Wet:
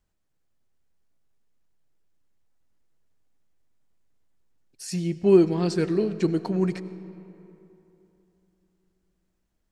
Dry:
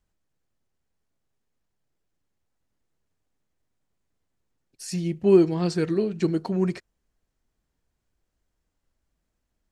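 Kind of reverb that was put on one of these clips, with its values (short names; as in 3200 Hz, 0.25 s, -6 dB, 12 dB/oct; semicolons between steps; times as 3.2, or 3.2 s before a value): digital reverb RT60 3.2 s, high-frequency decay 0.55×, pre-delay 55 ms, DRR 14.5 dB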